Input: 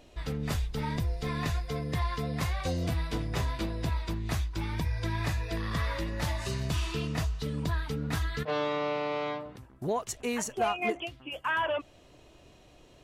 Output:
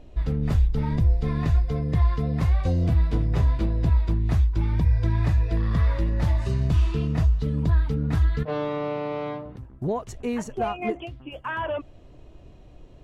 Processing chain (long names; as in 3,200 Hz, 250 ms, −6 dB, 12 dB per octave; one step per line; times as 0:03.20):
spectral tilt −3 dB per octave